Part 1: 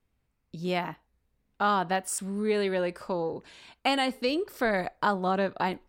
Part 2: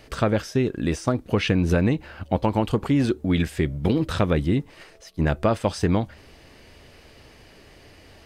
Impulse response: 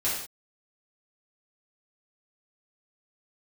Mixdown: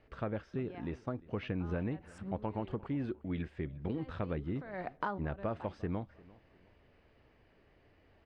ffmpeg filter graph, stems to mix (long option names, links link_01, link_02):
-filter_complex "[0:a]acompressor=threshold=-36dB:ratio=5,volume=2dB,asplit=3[link_01][link_02][link_03];[link_01]atrim=end=2.74,asetpts=PTS-STARTPTS,afade=type=out:start_time=2.736:duration=0.004:curve=hsin[link_04];[link_02]atrim=start=2.74:end=3.94,asetpts=PTS-STARTPTS,volume=0[link_05];[link_03]atrim=start=3.94,asetpts=PTS-STARTPTS,afade=type=in:duration=0.004:curve=hsin[link_06];[link_04][link_05][link_06]concat=n=3:v=0:a=1[link_07];[1:a]volume=-15.5dB,asplit=3[link_08][link_09][link_10];[link_09]volume=-22dB[link_11];[link_10]apad=whole_len=259728[link_12];[link_07][link_12]sidechaincompress=threshold=-52dB:ratio=16:attack=16:release=193[link_13];[link_11]aecho=0:1:351|702|1053|1404|1755:1|0.33|0.109|0.0359|0.0119[link_14];[link_13][link_08][link_14]amix=inputs=3:normalize=0,lowpass=2200"